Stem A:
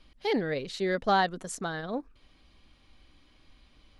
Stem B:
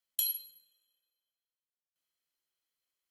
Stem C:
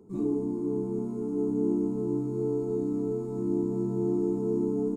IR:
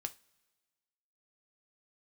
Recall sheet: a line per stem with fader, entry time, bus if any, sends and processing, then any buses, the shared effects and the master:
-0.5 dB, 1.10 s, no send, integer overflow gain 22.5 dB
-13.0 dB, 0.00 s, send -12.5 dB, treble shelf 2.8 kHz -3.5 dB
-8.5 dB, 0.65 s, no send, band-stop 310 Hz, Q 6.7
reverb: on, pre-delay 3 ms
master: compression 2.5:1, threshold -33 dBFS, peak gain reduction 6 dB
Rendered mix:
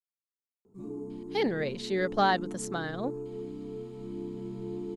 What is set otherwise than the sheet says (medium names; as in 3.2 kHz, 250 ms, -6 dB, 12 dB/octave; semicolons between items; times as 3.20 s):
stem A: missing integer overflow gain 22.5 dB; stem B: muted; reverb: off; master: missing compression 2.5:1, threshold -33 dBFS, peak gain reduction 6 dB